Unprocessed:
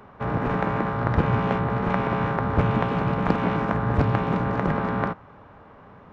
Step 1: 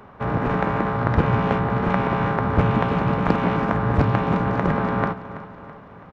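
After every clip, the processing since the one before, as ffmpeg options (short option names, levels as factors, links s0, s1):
-af "aecho=1:1:329|658|987|1316|1645:0.178|0.0907|0.0463|0.0236|0.012,volume=1.33"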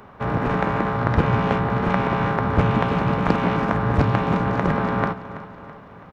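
-af "highshelf=f=3800:g=6"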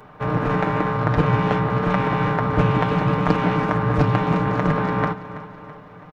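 -af "aecho=1:1:6.6:0.65,volume=0.891"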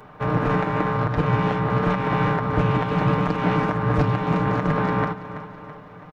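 -af "alimiter=limit=0.355:level=0:latency=1:release=208"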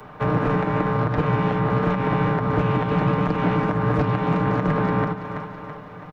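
-filter_complex "[0:a]acrossover=split=140|610|3900[s0][s1][s2][s3];[s0]acompressor=threshold=0.0282:ratio=4[s4];[s1]acompressor=threshold=0.0631:ratio=4[s5];[s2]acompressor=threshold=0.0316:ratio=4[s6];[s3]acompressor=threshold=0.001:ratio=4[s7];[s4][s5][s6][s7]amix=inputs=4:normalize=0,volume=1.5"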